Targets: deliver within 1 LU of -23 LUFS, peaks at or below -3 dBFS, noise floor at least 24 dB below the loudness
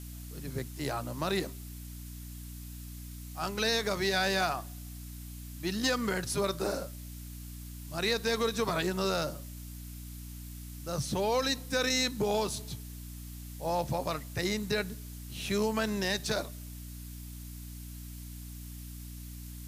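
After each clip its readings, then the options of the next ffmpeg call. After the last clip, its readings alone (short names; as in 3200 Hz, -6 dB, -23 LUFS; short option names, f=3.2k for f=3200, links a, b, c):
hum 60 Hz; harmonics up to 300 Hz; hum level -41 dBFS; noise floor -44 dBFS; noise floor target -56 dBFS; loudness -32.0 LUFS; peak -16.5 dBFS; loudness target -23.0 LUFS
-> -af "bandreject=f=60:t=h:w=6,bandreject=f=120:t=h:w=6,bandreject=f=180:t=h:w=6,bandreject=f=240:t=h:w=6,bandreject=f=300:t=h:w=6"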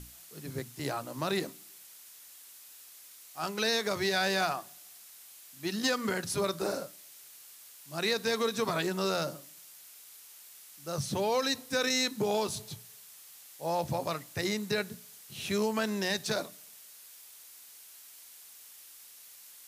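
hum none; noise floor -53 dBFS; noise floor target -56 dBFS
-> -af "afftdn=nr=6:nf=-53"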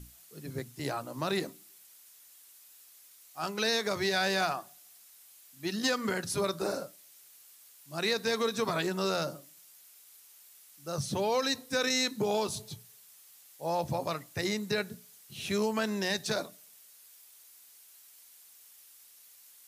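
noise floor -57 dBFS; loudness -32.0 LUFS; peak -17.0 dBFS; loudness target -23.0 LUFS
-> -af "volume=9dB"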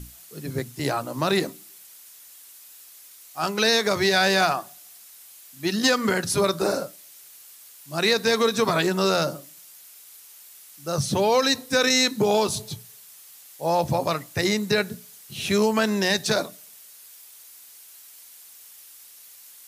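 loudness -23.0 LUFS; peak -8.0 dBFS; noise floor -48 dBFS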